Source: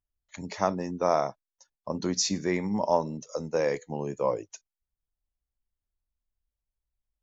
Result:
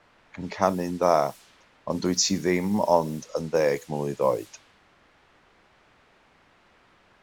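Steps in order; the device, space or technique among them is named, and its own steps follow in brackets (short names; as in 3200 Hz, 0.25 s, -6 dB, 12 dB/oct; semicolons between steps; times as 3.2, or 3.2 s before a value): cassette deck with a dynamic noise filter (white noise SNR 22 dB; low-pass opened by the level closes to 1600 Hz, open at -26 dBFS); gain +4 dB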